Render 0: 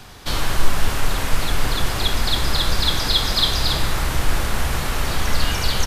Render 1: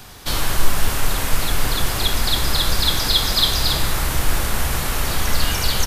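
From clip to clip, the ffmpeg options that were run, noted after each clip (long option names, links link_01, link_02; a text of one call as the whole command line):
ffmpeg -i in.wav -af "highshelf=frequency=8900:gain=10.5" out.wav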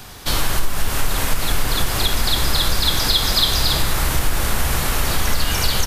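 ffmpeg -i in.wav -af "acompressor=threshold=-14dB:ratio=6,volume=2.5dB" out.wav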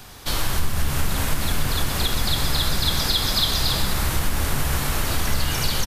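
ffmpeg -i in.wav -filter_complex "[0:a]asplit=7[link_01][link_02][link_03][link_04][link_05][link_06][link_07];[link_02]adelay=128,afreqshift=67,volume=-10dB[link_08];[link_03]adelay=256,afreqshift=134,volume=-15.7dB[link_09];[link_04]adelay=384,afreqshift=201,volume=-21.4dB[link_10];[link_05]adelay=512,afreqshift=268,volume=-27dB[link_11];[link_06]adelay=640,afreqshift=335,volume=-32.7dB[link_12];[link_07]adelay=768,afreqshift=402,volume=-38.4dB[link_13];[link_01][link_08][link_09][link_10][link_11][link_12][link_13]amix=inputs=7:normalize=0,volume=-4.5dB" out.wav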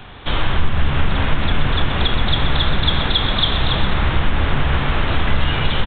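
ffmpeg -i in.wav -af "aresample=8000,aresample=44100,volume=6dB" out.wav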